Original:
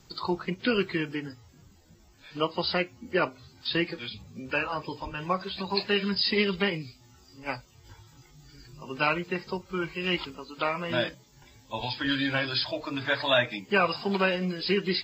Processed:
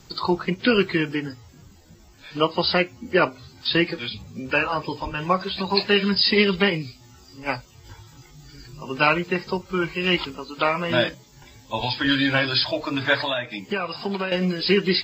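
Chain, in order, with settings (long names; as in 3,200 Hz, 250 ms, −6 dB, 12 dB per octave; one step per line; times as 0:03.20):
0:13.20–0:14.32: downward compressor 5 to 1, threshold −31 dBFS, peak gain reduction 12 dB
level +7 dB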